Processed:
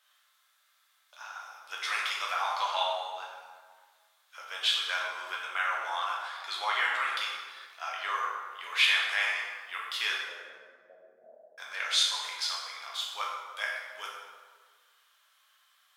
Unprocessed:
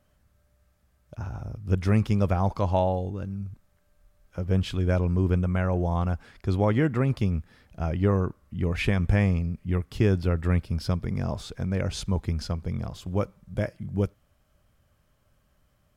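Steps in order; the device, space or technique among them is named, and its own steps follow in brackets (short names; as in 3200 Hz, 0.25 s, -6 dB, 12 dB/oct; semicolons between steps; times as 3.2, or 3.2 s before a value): 10.17–11.58 steep low-pass 640 Hz 72 dB/oct; headphones lying on a table (HPF 1100 Hz 24 dB/oct; bell 3600 Hz +10 dB 0.47 oct); plate-style reverb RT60 1.6 s, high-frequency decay 0.6×, DRR -4 dB; gain +2.5 dB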